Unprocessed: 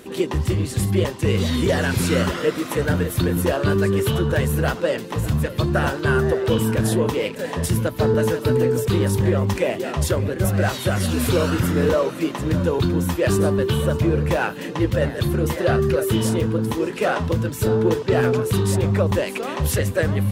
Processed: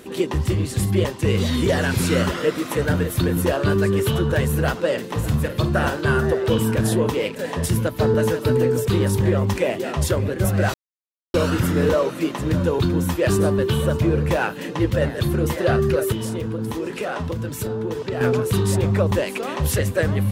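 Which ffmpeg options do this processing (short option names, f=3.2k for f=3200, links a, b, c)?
-filter_complex "[0:a]asettb=1/sr,asplit=3[a][b][c];[a]atrim=end=4.874[d];[b]atrim=start=4.87:end=6.27,asetpts=PTS-STARTPTS,afade=t=in:d=0.004:c=qsin,afade=t=out:st=1.396:d=0.004:c=qsin,asplit=2[e][f];[f]adelay=50,volume=-11dB[g];[e][g]amix=inputs=2:normalize=0,atrim=end_sample=61740[h];[c]atrim=start=6.266[i];[d][h]acrossfade=d=0.004:c1=hsin:c2=qsin[j];[j][i]acrossfade=d=0.004:c1=qsin:c2=hsin,asettb=1/sr,asplit=3[k][l][m];[k]atrim=end=16.124[n];[l]atrim=start=16.12:end=18.21,asetpts=PTS-STARTPTS,afade=t=in:d=0.004:c=qsin,afade=t=out:st=2.086:d=0.004:c=qsin,acompressor=threshold=-22dB:ratio=6:attack=3.2:release=140:knee=1:detection=peak[o];[m]atrim=start=18.206[p];[n][o]acrossfade=d=0.004:c1=hsin:c2=qsin[q];[q][p]acrossfade=d=0.004:c1=qsin:c2=hsin,asplit=3[r][s][t];[r]atrim=end=10.74,asetpts=PTS-STARTPTS,afade=t=out:st=10.736:d=0.004:c=hsin[u];[s]atrim=start=10.74:end=11.34,asetpts=PTS-STARTPTS,volume=0[v];[t]atrim=start=11.34,asetpts=PTS-STARTPTS,afade=t=in:d=0.004:c=hsin[w];[u][v][w]concat=n=3:v=0:a=1"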